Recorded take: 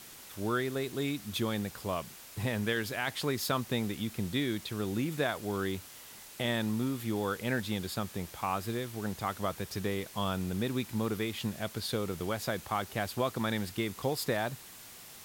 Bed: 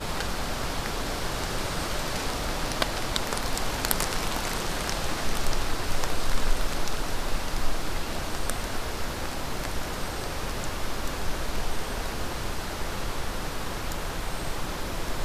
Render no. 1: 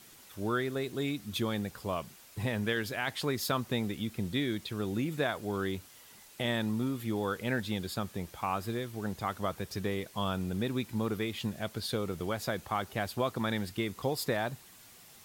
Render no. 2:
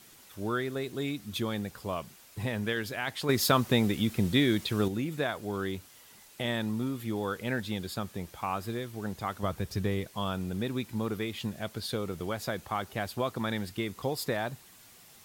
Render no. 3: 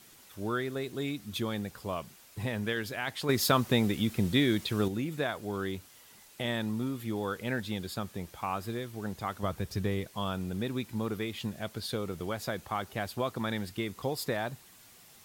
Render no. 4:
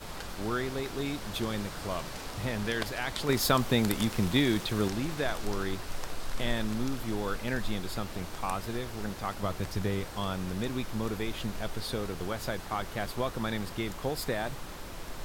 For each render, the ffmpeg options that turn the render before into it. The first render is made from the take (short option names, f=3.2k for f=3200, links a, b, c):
-af "afftdn=nr=6:nf=-50"
-filter_complex "[0:a]asettb=1/sr,asplit=3[a][b][c];[a]atrim=end=9.434[d];[b]atrim=start=9.43:end=10.08,asetpts=PTS-STARTPTS,afade=t=in:d=0.004:c=qsin,afade=t=out:st=0.646:d=0.004:c=qsin,lowshelf=f=150:g=10.5[e];[c]atrim=start=10.076[f];[d][e]acrossfade=d=0.004:c1=hsin:c2=qsin[g];[g][f]acrossfade=d=0.004:c1=qsin:c2=hsin,asplit=3[h][i][j];[h]atrim=end=3.292[k];[i]atrim=start=3.288:end=4.882,asetpts=PTS-STARTPTS,volume=7dB[l];[j]atrim=start=4.878[m];[k][l]acrossfade=d=0.004:c1=hsin:c2=hsin[n];[n][m]acrossfade=d=0.004:c1=hsin:c2=hsin"
-af "volume=-1dB"
-filter_complex "[1:a]volume=-10.5dB[a];[0:a][a]amix=inputs=2:normalize=0"